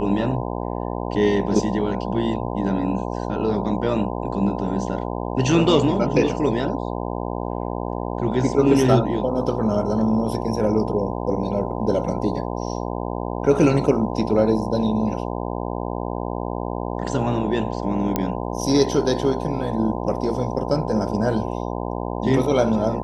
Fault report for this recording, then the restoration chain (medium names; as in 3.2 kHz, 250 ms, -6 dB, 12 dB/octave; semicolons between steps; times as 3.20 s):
buzz 60 Hz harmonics 17 -27 dBFS
18.16 s: pop -7 dBFS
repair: de-click; de-hum 60 Hz, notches 17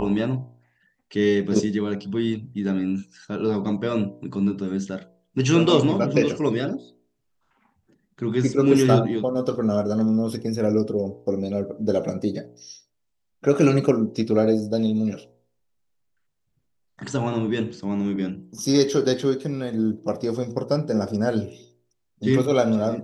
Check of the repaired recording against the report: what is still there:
nothing left